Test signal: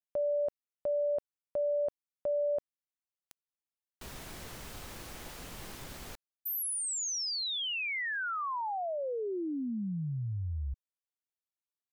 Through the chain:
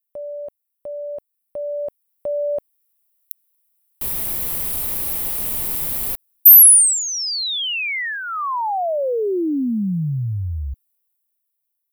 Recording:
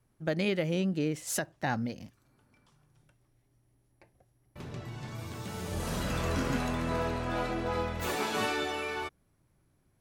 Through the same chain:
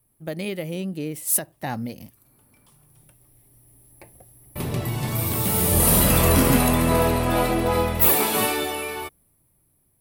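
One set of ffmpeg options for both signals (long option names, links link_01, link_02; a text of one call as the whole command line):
ffmpeg -i in.wav -af "aexciter=amount=4.9:drive=8.6:freq=9100,equalizer=frequency=1500:width=3.6:gain=-6.5,dynaudnorm=framelen=320:gausssize=13:maxgain=16dB" out.wav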